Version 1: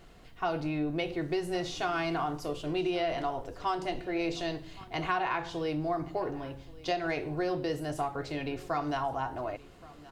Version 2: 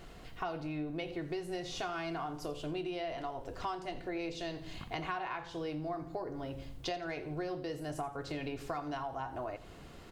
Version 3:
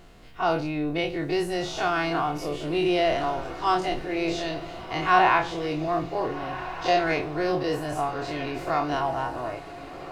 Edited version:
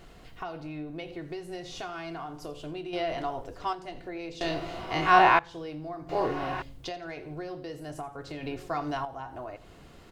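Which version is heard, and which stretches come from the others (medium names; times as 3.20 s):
2
2.93–3.73 s: from 1
4.41–5.39 s: from 3
6.09–6.62 s: from 3
8.43–9.05 s: from 1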